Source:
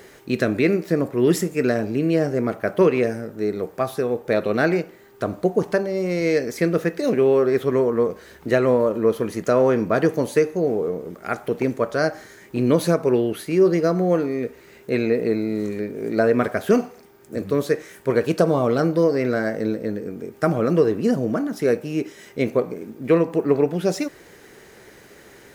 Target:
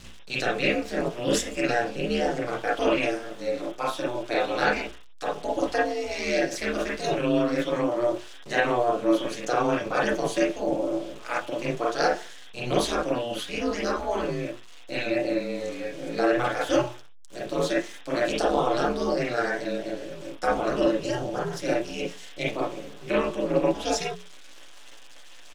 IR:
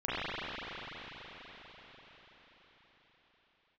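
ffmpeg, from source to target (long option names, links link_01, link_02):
-filter_complex "[0:a]aeval=exprs='val(0)*gte(abs(val(0)),0.00841)':channel_layout=same,acrossover=split=430 7800:gain=0.224 1 0.0708[link_01][link_02][link_03];[link_01][link_02][link_03]amix=inputs=3:normalize=0,aecho=1:1:6.8:0.69,aeval=exprs='val(0)+0.0112*(sin(2*PI*60*n/s)+sin(2*PI*2*60*n/s)/2+sin(2*PI*3*60*n/s)/3+sin(2*PI*4*60*n/s)/4+sin(2*PI*5*60*n/s)/5)':channel_layout=same,aeval=exprs='val(0)*sin(2*PI*120*n/s)':channel_layout=same,bandreject=frequency=60:width_type=h:width=6,bandreject=frequency=120:width_type=h:width=6,bandreject=frequency=180:width_type=h:width=6,bandreject=frequency=240:width_type=h:width=6,bandreject=frequency=300:width_type=h:width=6,bandreject=frequency=360:width_type=h:width=6,bandreject=frequency=420:width_type=h:width=6,aexciter=amount=3.1:drive=6.1:freq=2800[link_04];[1:a]atrim=start_sample=2205,atrim=end_sample=3087[link_05];[link_04][link_05]afir=irnorm=-1:irlink=0,volume=-3dB"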